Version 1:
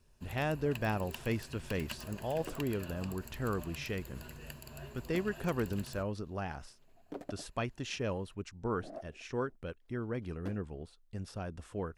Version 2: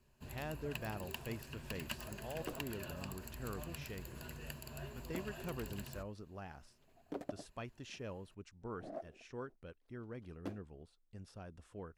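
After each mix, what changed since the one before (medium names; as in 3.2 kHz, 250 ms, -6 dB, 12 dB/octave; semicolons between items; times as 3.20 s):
speech -10.5 dB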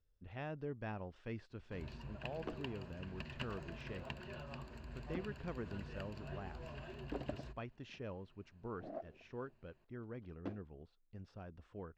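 first sound: entry +1.50 s; master: add distance through air 190 m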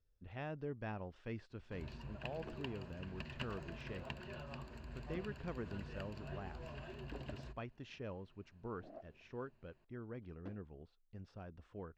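second sound -7.5 dB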